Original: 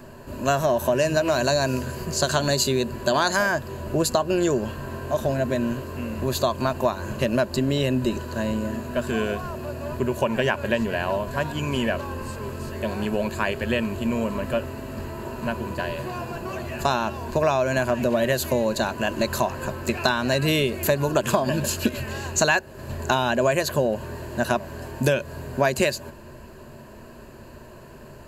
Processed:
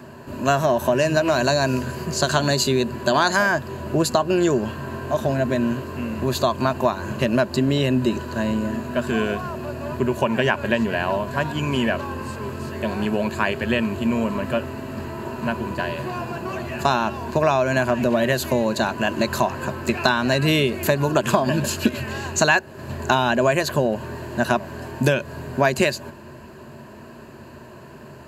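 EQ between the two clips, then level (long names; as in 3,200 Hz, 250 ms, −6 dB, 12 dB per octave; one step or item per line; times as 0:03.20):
high-pass filter 96 Hz
parametric band 520 Hz −4.5 dB 0.48 octaves
high-shelf EQ 5,800 Hz −7 dB
+4.0 dB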